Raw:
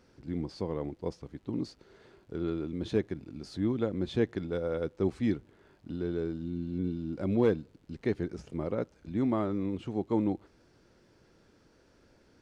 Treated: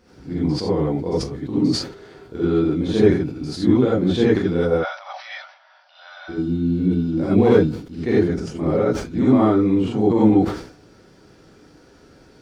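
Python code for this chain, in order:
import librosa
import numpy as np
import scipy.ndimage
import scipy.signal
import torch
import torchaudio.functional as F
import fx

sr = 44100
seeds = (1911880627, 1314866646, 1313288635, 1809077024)

y = fx.brickwall_bandpass(x, sr, low_hz=550.0, high_hz=6000.0, at=(4.73, 6.28), fade=0.02)
y = fx.rev_gated(y, sr, seeds[0], gate_ms=110, shape='rising', drr_db=-8.0)
y = fx.sustainer(y, sr, db_per_s=100.0)
y = y * 10.0 ** (4.0 / 20.0)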